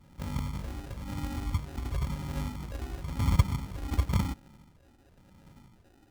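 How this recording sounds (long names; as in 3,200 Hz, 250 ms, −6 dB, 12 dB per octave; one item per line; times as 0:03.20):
a buzz of ramps at a fixed pitch in blocks of 16 samples
phaser sweep stages 12, 0.96 Hz, lowest notch 160–1,300 Hz
aliases and images of a low sample rate 1,100 Hz, jitter 0%
Ogg Vorbis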